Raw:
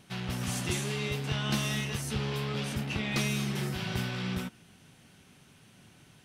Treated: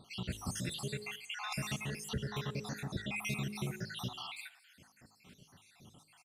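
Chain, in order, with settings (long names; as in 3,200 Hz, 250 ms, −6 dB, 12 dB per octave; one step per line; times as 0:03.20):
time-frequency cells dropped at random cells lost 67%
hum removal 52.47 Hz, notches 11
downward compressor 1.5 to 1, threshold −42 dBFS, peak gain reduction 5 dB
on a send at −20 dB: convolution reverb, pre-delay 3 ms
on the sum: downsampling to 32,000 Hz
level +1.5 dB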